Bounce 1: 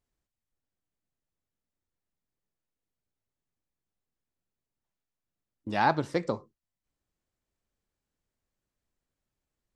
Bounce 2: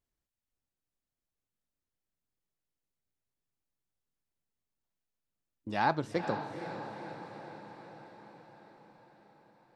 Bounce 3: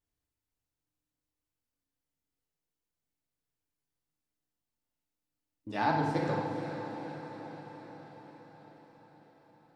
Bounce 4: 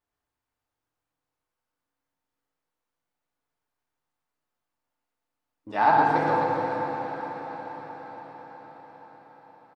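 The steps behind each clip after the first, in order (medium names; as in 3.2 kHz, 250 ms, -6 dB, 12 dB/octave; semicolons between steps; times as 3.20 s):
echo that smears into a reverb 473 ms, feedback 63%, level -8.5 dB; trim -4 dB
FDN reverb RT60 1.7 s, low-frequency decay 1.3×, high-frequency decay 0.75×, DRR -1.5 dB; trim -3.5 dB
peaking EQ 980 Hz +14.5 dB 2.7 oct; on a send: reverse bouncing-ball echo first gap 120 ms, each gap 1.2×, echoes 5; on the sum: trim -4.5 dB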